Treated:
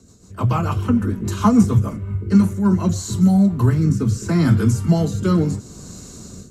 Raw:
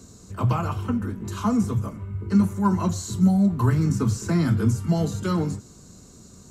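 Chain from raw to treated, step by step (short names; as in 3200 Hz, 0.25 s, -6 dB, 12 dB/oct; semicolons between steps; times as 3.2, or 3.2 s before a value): AGC gain up to 15 dB; rotary speaker horn 6.7 Hz, later 0.75 Hz, at 1.73; gain -1.5 dB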